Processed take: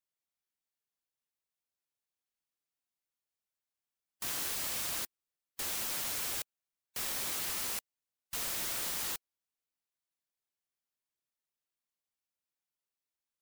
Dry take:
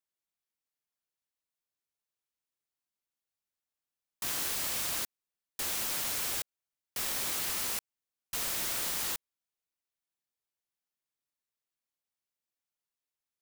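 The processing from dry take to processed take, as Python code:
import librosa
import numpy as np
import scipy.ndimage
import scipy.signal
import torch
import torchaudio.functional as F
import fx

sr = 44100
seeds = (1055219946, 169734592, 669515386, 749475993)

y = fx.spec_gate(x, sr, threshold_db=-15, keep='strong')
y = y * librosa.db_to_amplitude(-2.5)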